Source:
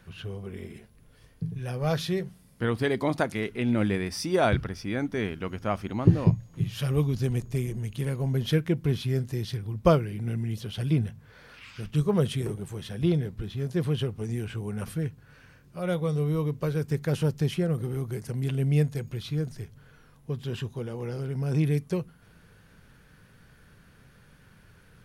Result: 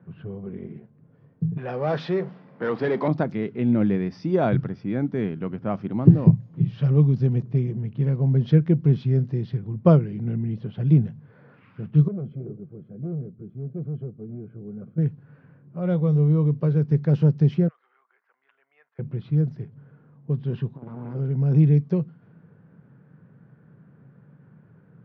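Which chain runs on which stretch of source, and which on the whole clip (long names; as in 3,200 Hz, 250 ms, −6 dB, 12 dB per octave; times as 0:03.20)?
0:01.57–0:03.08: mu-law and A-law mismatch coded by mu + high-pass filter 410 Hz 6 dB per octave + mid-hump overdrive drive 19 dB, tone 1,900 Hz, clips at −15 dBFS
0:12.08–0:14.98: hard clipping −26.5 dBFS + moving average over 48 samples + low-shelf EQ 230 Hz −11.5 dB
0:17.68–0:18.99: high-pass filter 1,300 Hz 24 dB per octave + head-to-tape spacing loss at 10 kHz 31 dB
0:20.75–0:21.15: lower of the sound and its delayed copy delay 0.84 ms + notch filter 1,800 Hz, Q 21 + saturating transformer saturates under 270 Hz
whole clip: elliptic band-pass filter 140–5,300 Hz; low-pass that shuts in the quiet parts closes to 1,500 Hz, open at −23 dBFS; spectral tilt −4 dB per octave; level −2 dB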